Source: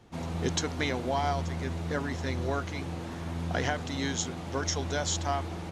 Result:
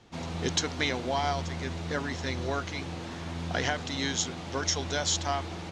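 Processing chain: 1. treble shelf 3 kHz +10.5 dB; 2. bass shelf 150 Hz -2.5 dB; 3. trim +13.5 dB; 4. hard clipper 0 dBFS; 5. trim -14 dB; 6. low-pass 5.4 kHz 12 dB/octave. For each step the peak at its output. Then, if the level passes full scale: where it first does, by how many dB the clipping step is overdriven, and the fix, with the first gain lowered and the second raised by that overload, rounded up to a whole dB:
-7.5 dBFS, -7.5 dBFS, +6.0 dBFS, 0.0 dBFS, -14.0 dBFS, -14.0 dBFS; step 3, 6.0 dB; step 3 +7.5 dB, step 5 -8 dB

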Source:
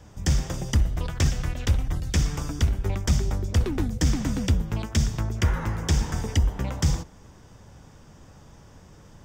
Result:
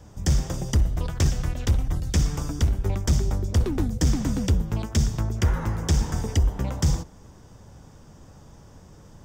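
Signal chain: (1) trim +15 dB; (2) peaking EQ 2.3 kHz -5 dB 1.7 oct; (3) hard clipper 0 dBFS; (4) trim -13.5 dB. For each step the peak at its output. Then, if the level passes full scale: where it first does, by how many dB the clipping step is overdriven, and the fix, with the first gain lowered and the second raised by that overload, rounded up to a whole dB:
+4.0 dBFS, +4.0 dBFS, 0.0 dBFS, -13.5 dBFS; step 1, 4.0 dB; step 1 +11 dB, step 4 -9.5 dB

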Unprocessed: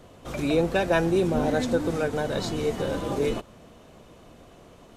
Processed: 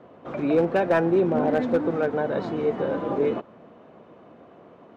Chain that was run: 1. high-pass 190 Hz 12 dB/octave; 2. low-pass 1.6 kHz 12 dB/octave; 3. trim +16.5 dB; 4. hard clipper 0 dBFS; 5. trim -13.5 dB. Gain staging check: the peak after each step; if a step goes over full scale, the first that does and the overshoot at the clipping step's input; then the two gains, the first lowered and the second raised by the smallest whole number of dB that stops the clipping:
-11.0 dBFS, -11.5 dBFS, +5.0 dBFS, 0.0 dBFS, -13.5 dBFS; step 3, 5.0 dB; step 3 +11.5 dB, step 5 -8.5 dB

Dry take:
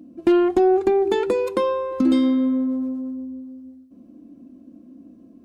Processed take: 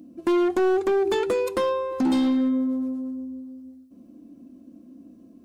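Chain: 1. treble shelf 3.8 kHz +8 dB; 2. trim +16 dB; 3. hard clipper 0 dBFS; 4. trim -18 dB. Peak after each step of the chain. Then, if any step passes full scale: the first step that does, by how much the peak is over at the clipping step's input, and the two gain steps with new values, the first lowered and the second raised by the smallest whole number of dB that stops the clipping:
-8.5 dBFS, +7.5 dBFS, 0.0 dBFS, -18.0 dBFS; step 2, 7.5 dB; step 2 +8 dB, step 4 -10 dB

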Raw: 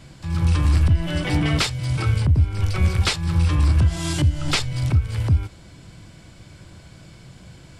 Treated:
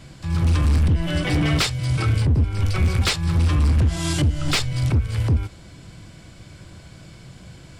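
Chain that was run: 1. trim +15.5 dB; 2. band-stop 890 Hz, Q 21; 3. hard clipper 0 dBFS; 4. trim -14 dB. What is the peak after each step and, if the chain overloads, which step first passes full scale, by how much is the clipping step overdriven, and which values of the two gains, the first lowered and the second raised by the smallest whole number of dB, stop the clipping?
+9.5 dBFS, +9.5 dBFS, 0.0 dBFS, -14.0 dBFS; step 1, 9.5 dB; step 1 +5.5 dB, step 4 -4 dB

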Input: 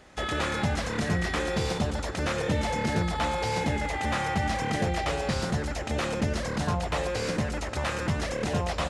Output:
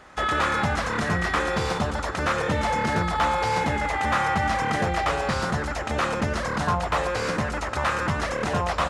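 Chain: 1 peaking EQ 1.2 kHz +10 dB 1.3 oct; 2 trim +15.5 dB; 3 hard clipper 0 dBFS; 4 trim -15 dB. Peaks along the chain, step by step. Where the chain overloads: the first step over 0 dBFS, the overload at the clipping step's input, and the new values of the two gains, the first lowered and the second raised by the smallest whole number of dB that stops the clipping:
-10.5 dBFS, +5.0 dBFS, 0.0 dBFS, -15.0 dBFS; step 2, 5.0 dB; step 2 +10.5 dB, step 4 -10 dB

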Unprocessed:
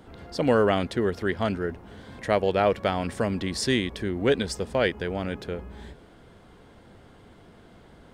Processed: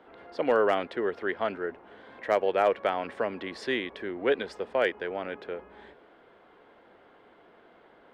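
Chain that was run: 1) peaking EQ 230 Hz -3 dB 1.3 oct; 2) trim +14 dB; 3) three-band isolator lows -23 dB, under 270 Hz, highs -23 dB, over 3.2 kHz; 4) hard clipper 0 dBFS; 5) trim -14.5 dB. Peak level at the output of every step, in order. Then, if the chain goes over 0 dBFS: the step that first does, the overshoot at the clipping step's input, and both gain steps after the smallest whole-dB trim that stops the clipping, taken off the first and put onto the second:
-9.0 dBFS, +5.0 dBFS, +3.0 dBFS, 0.0 dBFS, -14.5 dBFS; step 2, 3.0 dB; step 2 +11 dB, step 5 -11.5 dB

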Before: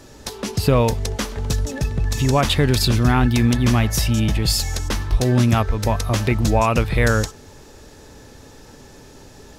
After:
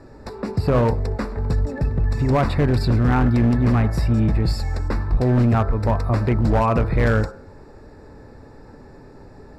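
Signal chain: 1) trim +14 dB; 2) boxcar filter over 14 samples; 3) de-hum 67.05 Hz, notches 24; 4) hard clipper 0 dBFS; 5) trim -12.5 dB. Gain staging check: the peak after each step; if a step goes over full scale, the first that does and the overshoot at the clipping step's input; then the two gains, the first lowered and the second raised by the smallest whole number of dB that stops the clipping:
+10.0 dBFS, +9.5 dBFS, +9.0 dBFS, 0.0 dBFS, -12.5 dBFS; step 1, 9.0 dB; step 1 +5 dB, step 5 -3.5 dB

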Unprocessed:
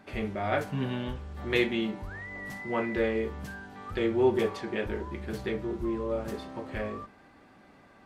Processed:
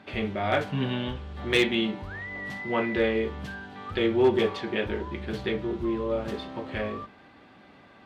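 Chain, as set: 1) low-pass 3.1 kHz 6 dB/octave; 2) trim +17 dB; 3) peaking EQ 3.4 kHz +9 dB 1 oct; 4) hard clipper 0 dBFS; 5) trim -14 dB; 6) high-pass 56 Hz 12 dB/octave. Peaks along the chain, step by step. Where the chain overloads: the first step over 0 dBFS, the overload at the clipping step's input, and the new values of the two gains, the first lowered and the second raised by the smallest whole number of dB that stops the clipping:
-13.0 dBFS, +4.0 dBFS, +6.0 dBFS, 0.0 dBFS, -14.0 dBFS, -12.0 dBFS; step 2, 6.0 dB; step 2 +11 dB, step 5 -8 dB

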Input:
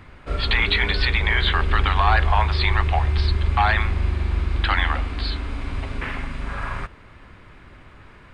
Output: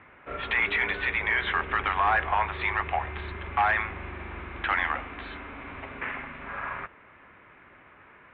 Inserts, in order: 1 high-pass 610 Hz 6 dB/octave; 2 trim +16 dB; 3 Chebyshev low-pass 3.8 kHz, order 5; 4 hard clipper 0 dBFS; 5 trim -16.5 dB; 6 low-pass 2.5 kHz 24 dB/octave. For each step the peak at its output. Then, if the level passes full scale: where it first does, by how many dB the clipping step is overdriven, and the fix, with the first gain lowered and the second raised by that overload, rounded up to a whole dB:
-9.0 dBFS, +7.0 dBFS, +6.5 dBFS, 0.0 dBFS, -16.5 dBFS, -15.0 dBFS; step 2, 6.5 dB; step 2 +9 dB, step 5 -9.5 dB

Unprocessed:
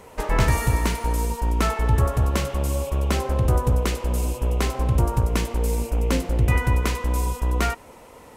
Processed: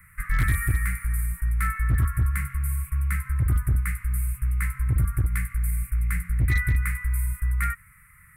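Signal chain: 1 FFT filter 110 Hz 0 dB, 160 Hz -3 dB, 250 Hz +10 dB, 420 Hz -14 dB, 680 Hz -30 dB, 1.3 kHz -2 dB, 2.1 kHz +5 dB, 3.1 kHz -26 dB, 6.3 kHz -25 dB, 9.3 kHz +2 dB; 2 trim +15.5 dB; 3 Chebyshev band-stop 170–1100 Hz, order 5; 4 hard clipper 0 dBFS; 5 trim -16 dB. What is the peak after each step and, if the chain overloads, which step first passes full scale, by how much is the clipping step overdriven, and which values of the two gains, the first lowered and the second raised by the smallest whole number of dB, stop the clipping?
-7.5 dBFS, +8.0 dBFS, +6.5 dBFS, 0.0 dBFS, -16.0 dBFS; step 2, 6.5 dB; step 2 +8.5 dB, step 5 -9 dB

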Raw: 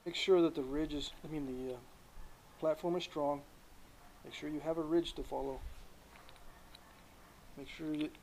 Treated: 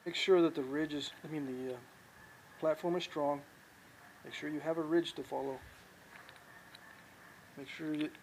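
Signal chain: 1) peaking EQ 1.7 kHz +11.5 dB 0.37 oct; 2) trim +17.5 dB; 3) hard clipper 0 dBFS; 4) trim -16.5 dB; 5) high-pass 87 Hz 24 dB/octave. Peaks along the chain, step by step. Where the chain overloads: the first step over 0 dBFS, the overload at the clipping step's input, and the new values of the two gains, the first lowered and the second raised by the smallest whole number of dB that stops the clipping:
-19.0 dBFS, -1.5 dBFS, -1.5 dBFS, -18.0 dBFS, -17.5 dBFS; nothing clips

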